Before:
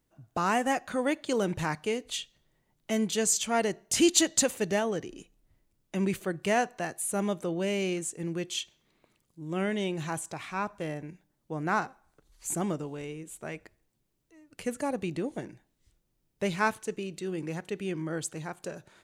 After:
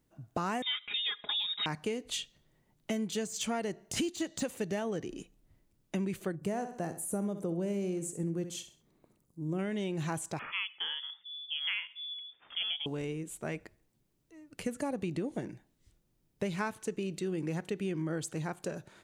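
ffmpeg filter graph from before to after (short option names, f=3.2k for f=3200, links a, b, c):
-filter_complex "[0:a]asettb=1/sr,asplit=3[a][b][c];[a]atrim=end=0.624[d];[b]atrim=start=0.62:end=1.66,asetpts=PTS-STARTPTS,afade=t=in:d=0.004:c=qsin,afade=t=out:st=1.036:d=0.004:c=qsin,aecho=1:1:4.9:0.64,atrim=end_sample=45864,lowpass=f=3.3k:t=q:w=0.5098,lowpass=f=3.3k:t=q:w=0.6013,lowpass=f=3.3k:t=q:w=0.9,lowpass=f=3.3k:t=q:w=2.563,afreqshift=-3900[e];[c]atrim=start=1.656[f];[d][e]acrossfade=d=0.004:c1=hsin:c2=qsin[g];[g][f]acrossfade=d=0.004:c1=qsin:c2=hsin,asettb=1/sr,asplit=3[h][i][j];[h]atrim=end=6.354[k];[i]atrim=start=6.35:end=9.59,asetpts=PTS-STARTPTS,afade=t=in:d=0.004:c=qsin,afade=t=out:st=3.236:d=0.004:c=qsin,equalizer=f=2.8k:w=0.58:g=-12,aecho=1:1:65|130|195:0.251|0.0829|0.0274,atrim=end_sample=142884[l];[j]atrim=start=9.586[m];[k][l]acrossfade=d=0.004:c1=hsin:c2=qsin[n];[n][m]acrossfade=d=0.004:c1=qsin:c2=hsin,asettb=1/sr,asplit=3[o][p][q];[o]atrim=end=10.394[r];[p]atrim=start=10.39:end=12.86,asetpts=PTS-STARTPTS,afade=t=in:d=0.004:c=qsin,afade=t=out:st=2.466:d=0.004:c=qsin,acrossover=split=180[s][t];[s]adelay=450[u];[u][t]amix=inputs=2:normalize=0,atrim=end_sample=108927,lowpass=f=3.1k:t=q:w=0.5098,lowpass=f=3.1k:t=q:w=0.6013,lowpass=f=3.1k:t=q:w=0.9,lowpass=f=3.1k:t=q:w=2.563,afreqshift=-3600[v];[q]atrim=start=12.856[w];[r][v]acrossfade=d=0.004:c1=hsin:c2=qsin[x];[x][w]acrossfade=d=0.004:c1=qsin:c2=hsin,deesser=0.6,equalizer=f=180:t=o:w=2.6:g=4,acompressor=threshold=-30dB:ratio=12"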